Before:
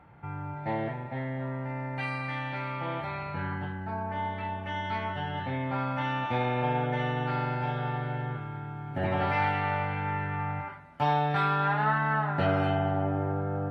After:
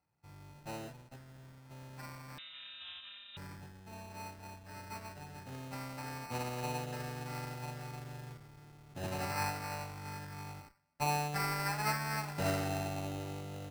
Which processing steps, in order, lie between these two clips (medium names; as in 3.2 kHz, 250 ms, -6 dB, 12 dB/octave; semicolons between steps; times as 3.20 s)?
1.16–1.71 s: peaking EQ 420 Hz -10.5 dB 1.9 oct; sample-and-hold 13×; in parallel at -6.5 dB: Schmitt trigger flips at -36 dBFS; 2.38–3.37 s: on the sum: frequency inversion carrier 3.8 kHz; upward expansion 2.5:1, over -36 dBFS; trim -7.5 dB